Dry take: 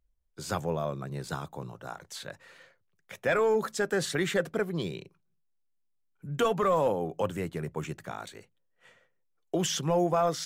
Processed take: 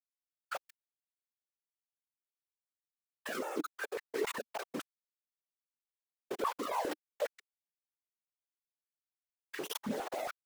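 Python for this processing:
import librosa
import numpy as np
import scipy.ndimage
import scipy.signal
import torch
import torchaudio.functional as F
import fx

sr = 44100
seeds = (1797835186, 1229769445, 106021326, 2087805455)

y = fx.bin_expand(x, sr, power=3.0)
y = scipy.signal.sosfilt(scipy.signal.butter(2, 2400.0, 'lowpass', fs=sr, output='sos'), y)
y = fx.quant_companded(y, sr, bits=2)
y = fx.whisperise(y, sr, seeds[0])
y = fx.level_steps(y, sr, step_db=22)
y = fx.filter_held_highpass(y, sr, hz=7.3, low_hz=230.0, high_hz=1800.0)
y = F.gain(torch.from_numpy(y), 4.5).numpy()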